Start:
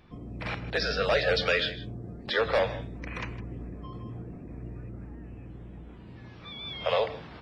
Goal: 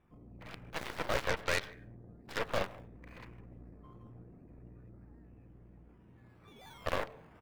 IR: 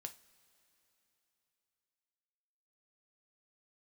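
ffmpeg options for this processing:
-filter_complex "[0:a]asettb=1/sr,asplit=3[link_01][link_02][link_03];[link_01]atrim=end=1.294[link_04];[link_02]atrim=start=1.29:end=1.89,asetpts=PTS-STARTPTS,afade=type=in:duration=0.004:curve=qsin,afade=type=out:start_time=0.596:duration=0.004:curve=qsin,highshelf=frequency=2600:width_type=q:width=3:gain=-6.5[link_05];[link_03]atrim=start=1.886[link_06];[link_04][link_05]acrossfade=duration=0.004:curve1=hsin:curve2=qsin[link_07];[link_07][link_06]acrossfade=duration=0.004:curve1=qsin:curve2=hsin,acrossover=split=2700[link_08][link_09];[link_09]acrusher=samples=19:mix=1:aa=0.000001:lfo=1:lforange=11.4:lforate=0.74[link_10];[link_08][link_10]amix=inputs=2:normalize=0,asplit=2[link_11][link_12];[link_12]adelay=209.9,volume=-26dB,highshelf=frequency=4000:gain=-4.72[link_13];[link_11][link_13]amix=inputs=2:normalize=0,aeval=exprs='0.237*(cos(1*acos(clip(val(0)/0.237,-1,1)))-cos(1*PI/2))+0.0668*(cos(4*acos(clip(val(0)/0.237,-1,1)))-cos(4*PI/2))+0.015*(cos(5*acos(clip(val(0)/0.237,-1,1)))-cos(5*PI/2))+0.0668*(cos(7*acos(clip(val(0)/0.237,-1,1)))-cos(7*PI/2))':channel_layout=same,volume=-9dB"

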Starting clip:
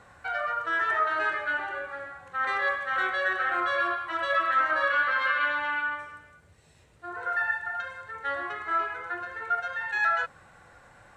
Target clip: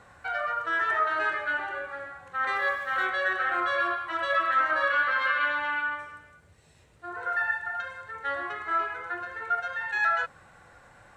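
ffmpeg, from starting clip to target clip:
ffmpeg -i in.wav -filter_complex "[0:a]asplit=3[link_01][link_02][link_03];[link_01]afade=type=out:start_time=2.54:duration=0.02[link_04];[link_02]aeval=exprs='sgn(val(0))*max(abs(val(0))-0.0015,0)':channel_layout=same,afade=type=in:start_time=2.54:duration=0.02,afade=type=out:start_time=3.05:duration=0.02[link_05];[link_03]afade=type=in:start_time=3.05:duration=0.02[link_06];[link_04][link_05][link_06]amix=inputs=3:normalize=0" out.wav

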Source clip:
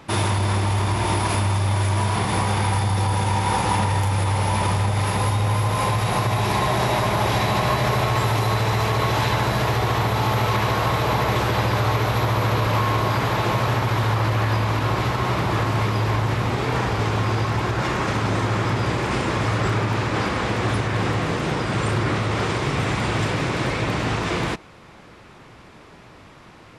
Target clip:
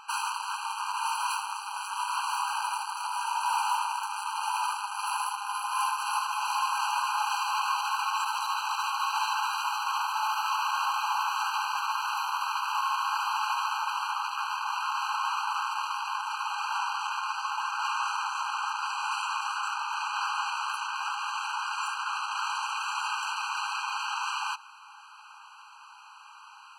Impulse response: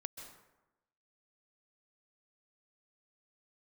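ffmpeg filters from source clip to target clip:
-af "bandreject=frequency=60:width_type=h:width=6,bandreject=frequency=120:width_type=h:width=6,aeval=exprs='(tanh(12.6*val(0)+0.1)-tanh(0.1))/12.6':channel_layout=same,afftfilt=real='re*eq(mod(floor(b*sr/1024/800),2),1)':imag='im*eq(mod(floor(b*sr/1024/800),2),1)':win_size=1024:overlap=0.75,volume=1.5dB"

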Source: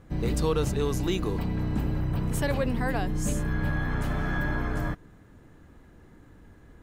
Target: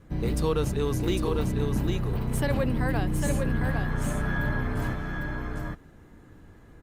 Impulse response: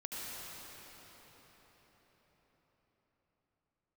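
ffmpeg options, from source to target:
-filter_complex "[0:a]adynamicequalizer=threshold=0.00398:dfrequency=750:dqfactor=5.9:tfrequency=750:tqfactor=5.9:attack=5:release=100:ratio=0.375:range=1.5:mode=cutabove:tftype=bell,asplit=2[link_01][link_02];[link_02]aecho=0:1:802:0.631[link_03];[link_01][link_03]amix=inputs=2:normalize=0" -ar 48000 -c:a libopus -b:a 48k

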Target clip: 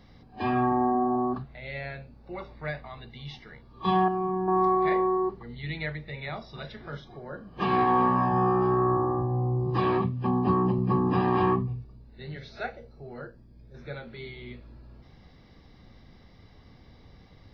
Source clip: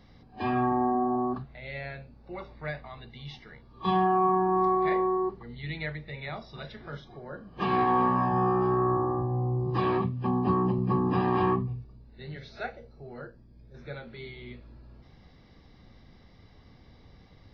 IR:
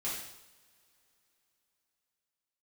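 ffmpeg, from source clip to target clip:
-filter_complex "[0:a]asettb=1/sr,asplit=3[link_01][link_02][link_03];[link_01]atrim=end=4.084[link_04];[link_02]atrim=start=4.08:end=4.48,asetpts=PTS-STARTPTS,afade=type=in:duration=0.004:curve=qsin,afade=type=out:start_time=0.396:duration=0.004:curve=qsin,equalizer=frequency=1200:width=0.43:gain=-10.5[link_05];[link_03]atrim=start=4.476[link_06];[link_04][link_05]acrossfade=duration=0.004:curve1=hsin:curve2=qsin[link_07];[link_07][link_06]acrossfade=duration=0.004:curve1=qsin:curve2=hsin,volume=1.5dB"

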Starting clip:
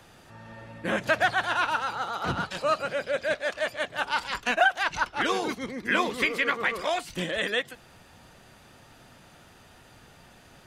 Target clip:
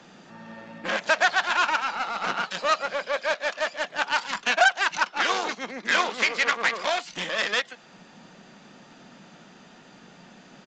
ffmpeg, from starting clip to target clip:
ffmpeg -i in.wav -filter_complex "[0:a]aeval=exprs='0.316*(cos(1*acos(clip(val(0)/0.316,-1,1)))-cos(1*PI/2))+0.0447*(cos(8*acos(clip(val(0)/0.316,-1,1)))-cos(8*PI/2))':channel_layout=same,acrossover=split=520|5400[link_01][link_02][link_03];[link_01]acompressor=threshold=-47dB:ratio=6[link_04];[link_04][link_02][link_03]amix=inputs=3:normalize=0,lowshelf=frequency=130:width_type=q:width=3:gain=-13,aresample=16000,aresample=44100,volume=2.5dB" out.wav

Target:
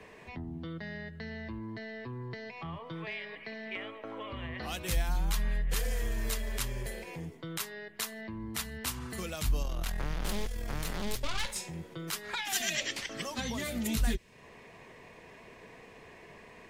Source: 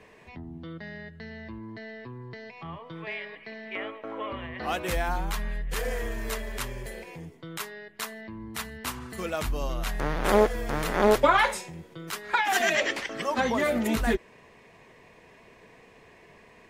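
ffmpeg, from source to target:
ffmpeg -i in.wav -filter_complex "[0:a]asettb=1/sr,asplit=3[link_01][link_02][link_03];[link_01]atrim=end=9.624[link_04];[link_02]atrim=start=9.62:end=11.56,asetpts=PTS-STARTPTS,afade=type=in:duration=0.004:curve=qsin,afade=type=out:start_time=1.936:duration=0.004:curve=qsin,aeval=exprs='(tanh(11.2*val(0)+0.8)-tanh(0.8))/11.2':channel_layout=same[link_05];[link_03]atrim=start=11.556[link_06];[link_04][link_05]acrossfade=duration=0.004:curve1=hsin:curve2=qsin[link_07];[link_07][link_06]acrossfade=duration=0.004:curve1=qsin:curve2=hsin,acrossover=split=180|3000[link_08][link_09][link_10];[link_09]acompressor=threshold=-42dB:ratio=6[link_11];[link_08][link_11][link_10]amix=inputs=3:normalize=0,volume=1.5dB" out.wav

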